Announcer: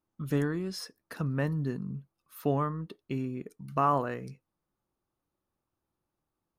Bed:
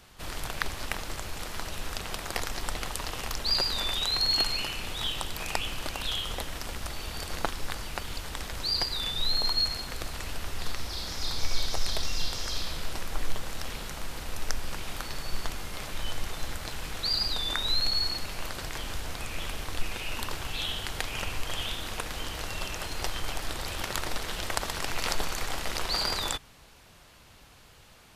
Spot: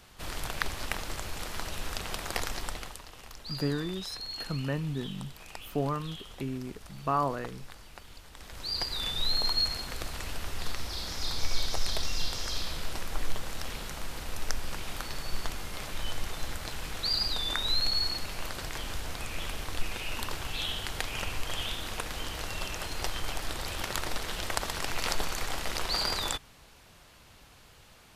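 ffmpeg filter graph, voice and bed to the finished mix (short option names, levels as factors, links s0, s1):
-filter_complex "[0:a]adelay=3300,volume=0.794[s0];[1:a]volume=3.98,afade=t=out:st=2.49:d=0.54:silence=0.223872,afade=t=in:st=8.34:d=0.72:silence=0.237137[s1];[s0][s1]amix=inputs=2:normalize=0"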